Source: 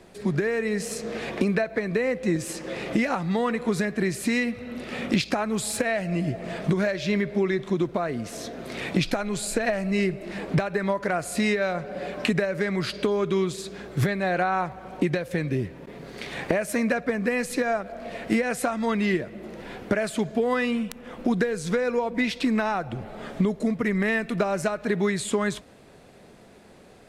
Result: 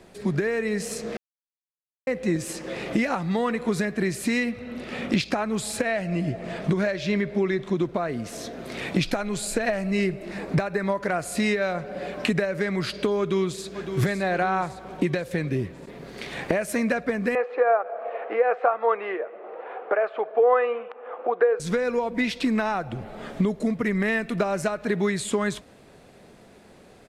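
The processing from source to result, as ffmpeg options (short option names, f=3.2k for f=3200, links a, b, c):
-filter_complex "[0:a]asettb=1/sr,asplit=3[a][b][c];[a]atrim=end=4.494[d];[b]atrim=start=4.49:end=8.1,asetpts=PTS-STARTPTS,afade=t=in:d=0.004:c=qsin,afade=t=out:st=3.606:d=0.004:c=qsin,highshelf=f=9.3k:g=-6[e];[c]atrim=start=8.096[f];[d][e]acrossfade=d=0.004:c1=hsin:c2=qsin[g];[g][f]acrossfade=d=0.004:c1=qsin:c2=hsin,asettb=1/sr,asplit=3[h][i][j];[h]atrim=end=10.304[k];[i]atrim=start=10.3:end=10.92,asetpts=PTS-STARTPTS,afade=t=in:d=0.004:c=qsin,afade=t=out:st=0.616:d=0.004:c=qsin,equalizer=f=3.1k:w=5.5:g=-7[l];[j]atrim=start=10.916[m];[k][l]acrossfade=d=0.004:c1=hsin:c2=qsin[n];[n][m]acrossfade=d=0.004:c1=qsin:c2=hsin,asplit=2[o][p];[p]afade=t=in:st=13.19:d=0.01,afade=t=out:st=13.92:d=0.01,aecho=0:1:560|1120|1680|2240|2800|3360|3920:0.375837|0.206711|0.113691|0.0625299|0.0343915|0.0189153|0.0104034[q];[o][q]amix=inputs=2:normalize=0,asettb=1/sr,asplit=3[r][s][t];[r]atrim=end=17.354[u];[s]atrim=start=17.35:end=21.6,asetpts=PTS-STARTPTS,afade=t=in:d=0.004:c=qsin,afade=t=out:st=4.246:d=0.004:c=qsin,highpass=f=450:w=0.5412,highpass=f=450:w=1.3066,equalizer=f=470:t=q:w=4:g=9,equalizer=f=780:t=q:w=4:g=9,equalizer=f=1.2k:t=q:w=4:g=8,equalizer=f=2k:t=q:w=4:g=-5,lowpass=f=2.3k:w=0.5412,lowpass=f=2.3k:w=1.3066[v];[t]atrim=start=21.596[w];[u][v]acrossfade=d=0.004:c1=hsin:c2=qsin[x];[x][w]acrossfade=d=0.004:c1=qsin:c2=hsin,asplit=3[y][z][aa];[y]atrim=end=1.17,asetpts=PTS-STARTPTS,afade=t=out:st=1.166:d=0.004:c=hsin[ab];[z]atrim=start=1.17:end=2.07,asetpts=PTS-STARTPTS,volume=0[ac];[aa]atrim=start=2.07,asetpts=PTS-STARTPTS,afade=t=in:d=0.004:c=hsin[ad];[ab][ac][ad]concat=n=3:v=0:a=1"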